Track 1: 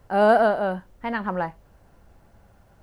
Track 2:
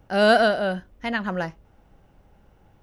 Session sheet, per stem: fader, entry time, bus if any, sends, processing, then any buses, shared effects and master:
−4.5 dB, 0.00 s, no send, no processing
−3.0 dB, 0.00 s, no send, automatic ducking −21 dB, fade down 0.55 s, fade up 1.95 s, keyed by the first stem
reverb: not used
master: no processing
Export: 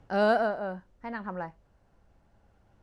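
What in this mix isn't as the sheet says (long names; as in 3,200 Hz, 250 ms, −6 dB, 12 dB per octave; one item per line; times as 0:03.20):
stem 1 −4.5 dB → −10.5 dB
master: extra low-pass filter 7,700 Hz 12 dB per octave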